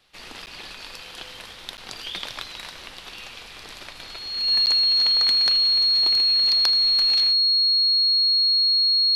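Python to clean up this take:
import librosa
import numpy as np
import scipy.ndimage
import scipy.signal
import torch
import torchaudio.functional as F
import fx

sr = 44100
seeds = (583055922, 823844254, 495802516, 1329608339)

y = fx.notch(x, sr, hz=4300.0, q=30.0)
y = fx.fix_interpolate(y, sr, at_s=(0.46, 1.77, 4.66), length_ms=9.2)
y = fx.fix_echo_inverse(y, sr, delay_ms=80, level_db=-17.5)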